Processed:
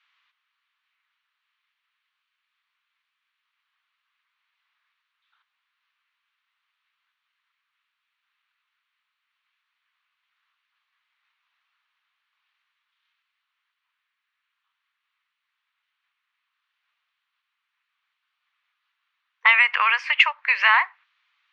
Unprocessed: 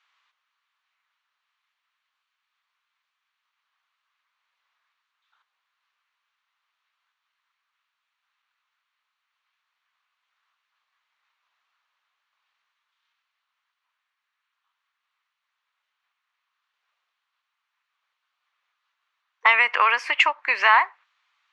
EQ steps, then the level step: BPF 650–2900 Hz; tilt shelf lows -9 dB, about 1400 Hz; 0.0 dB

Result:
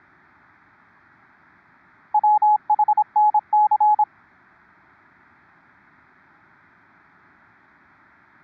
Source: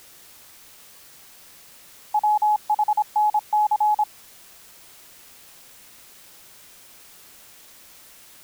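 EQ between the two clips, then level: air absorption 50 m; speaker cabinet 120–2200 Hz, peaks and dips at 140 Hz -5 dB, 210 Hz -3 dB, 710 Hz -5 dB, 1100 Hz -7 dB; fixed phaser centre 1200 Hz, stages 4; +9.0 dB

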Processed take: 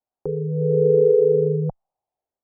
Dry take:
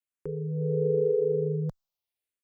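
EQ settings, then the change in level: synth low-pass 770 Hz, resonance Q 4.9; +6.0 dB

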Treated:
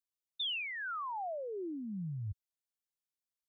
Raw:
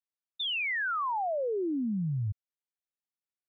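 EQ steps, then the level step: graphic EQ 125/250/500/1000/2000 Hz -7/-8/-7/-5/-9 dB; 0.0 dB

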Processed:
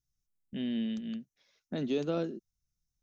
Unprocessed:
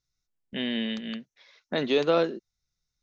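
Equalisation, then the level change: ten-band EQ 500 Hz -8 dB, 1000 Hz -12 dB, 2000 Hz -12 dB, 4000 Hz -11 dB; 0.0 dB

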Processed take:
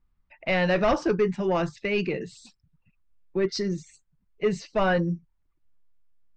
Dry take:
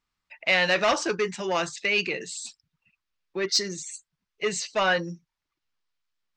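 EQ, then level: dynamic EQ 5300 Hz, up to +6 dB, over -46 dBFS, Q 3.1; tone controls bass +1 dB, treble -5 dB; tilt -4 dB/oct; -1.5 dB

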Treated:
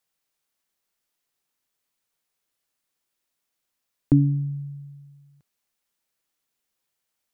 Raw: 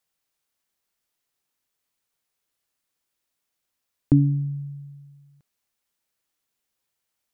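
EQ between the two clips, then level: bell 80 Hz -12 dB 0.3 oct; 0.0 dB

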